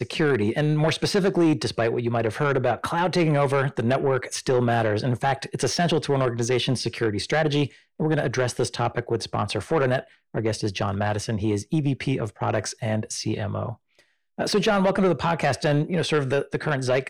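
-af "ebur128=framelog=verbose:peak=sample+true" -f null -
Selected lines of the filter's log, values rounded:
Integrated loudness:
  I:         -24.0 LUFS
  Threshold: -34.1 LUFS
Loudness range:
  LRA:         3.7 LU
  Threshold: -44.4 LUFS
  LRA low:   -26.4 LUFS
  LRA high:  -22.7 LUFS
Sample peak:
  Peak:      -13.8 dBFS
True peak:
  Peak:      -13.8 dBFS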